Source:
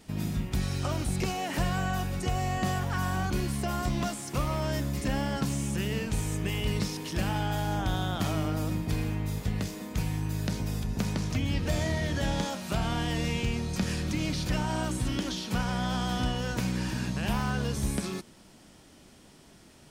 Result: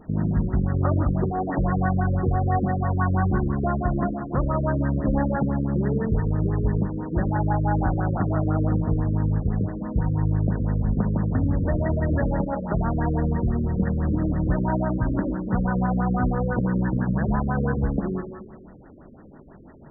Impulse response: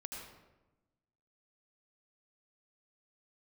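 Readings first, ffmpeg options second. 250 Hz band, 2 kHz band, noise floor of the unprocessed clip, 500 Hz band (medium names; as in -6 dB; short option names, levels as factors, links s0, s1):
+7.5 dB, +0.5 dB, -55 dBFS, +7.0 dB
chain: -filter_complex "[0:a]alimiter=limit=0.0944:level=0:latency=1:release=370,asplit=2[s0][s1];[1:a]atrim=start_sample=2205,lowshelf=f=260:g=-10,adelay=76[s2];[s1][s2]afir=irnorm=-1:irlink=0,volume=0.841[s3];[s0][s3]amix=inputs=2:normalize=0,afftfilt=real='re*lt(b*sr/1024,530*pow(2000/530,0.5+0.5*sin(2*PI*6*pts/sr)))':imag='im*lt(b*sr/1024,530*pow(2000/530,0.5+0.5*sin(2*PI*6*pts/sr)))':win_size=1024:overlap=0.75,volume=2.66"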